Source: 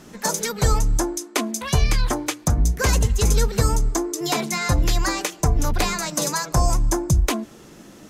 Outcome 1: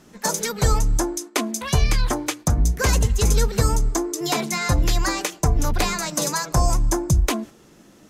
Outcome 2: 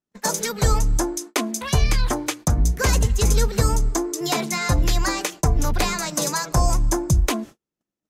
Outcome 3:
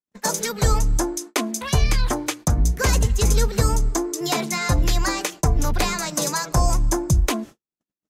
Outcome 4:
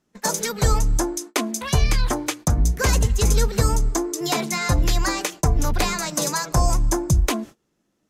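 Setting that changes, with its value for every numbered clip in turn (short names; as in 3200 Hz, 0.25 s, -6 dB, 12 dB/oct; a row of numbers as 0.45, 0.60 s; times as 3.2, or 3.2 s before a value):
gate, range: -6, -45, -58, -27 dB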